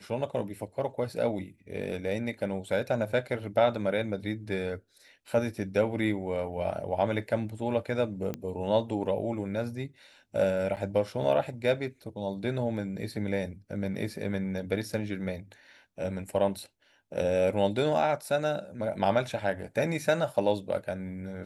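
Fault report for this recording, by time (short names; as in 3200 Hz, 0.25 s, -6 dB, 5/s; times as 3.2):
8.34 pop -20 dBFS
10.76–10.77 gap 8.5 ms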